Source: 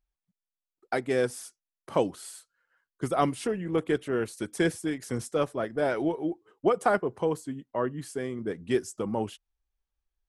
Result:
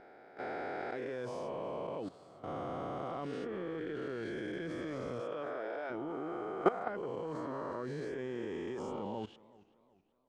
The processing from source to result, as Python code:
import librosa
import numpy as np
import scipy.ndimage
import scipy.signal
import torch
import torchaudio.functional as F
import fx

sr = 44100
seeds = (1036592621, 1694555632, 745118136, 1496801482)

y = fx.spec_swells(x, sr, rise_s=2.6)
y = fx.highpass(y, sr, hz=fx.line((5.2, 140.0), (5.89, 580.0)), slope=12, at=(5.2, 5.89), fade=0.02)
y = fx.level_steps(y, sr, step_db=17)
y = fx.air_absorb(y, sr, metres=170.0)
y = fx.echo_warbled(y, sr, ms=376, feedback_pct=40, rate_hz=2.8, cents=134, wet_db=-22.0)
y = y * 10.0 ** (-5.0 / 20.0)